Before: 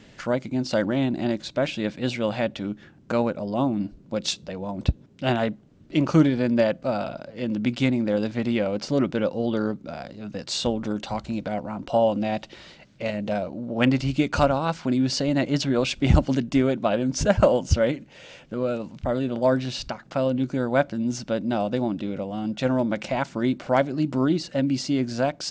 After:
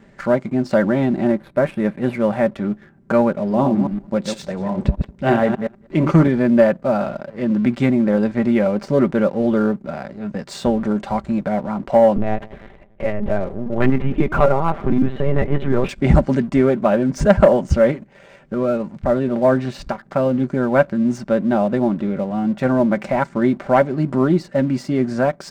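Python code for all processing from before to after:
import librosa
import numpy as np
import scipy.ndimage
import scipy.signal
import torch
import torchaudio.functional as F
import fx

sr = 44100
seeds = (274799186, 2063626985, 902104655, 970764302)

y = fx.chain(x, sr, fx.median_filter(points=9),
    fx.air_absorb(metres=79.0), at=(1.25, 2.56))
y = fx.chain(y, sr, fx.reverse_delay(ms=120, wet_db=-6),
    fx.echo_single(ms=201, db=-23.0), at=(3.39, 6.28))
y = fx.chain(y, sr, fx.air_absorb(metres=78.0),
    fx.echo_filtered(ms=101, feedback_pct=75, hz=1800.0, wet_db=-18.5),
    fx.lpc_vocoder(seeds[0], excitation='pitch_kept', order=10), at=(12.16, 15.89))
y = fx.band_shelf(y, sr, hz=4300.0, db=-12.5, octaves=1.7)
y = y + 0.47 * np.pad(y, (int(5.1 * sr / 1000.0), 0))[:len(y)]
y = fx.leveller(y, sr, passes=1)
y = y * 10.0 ** (2.5 / 20.0)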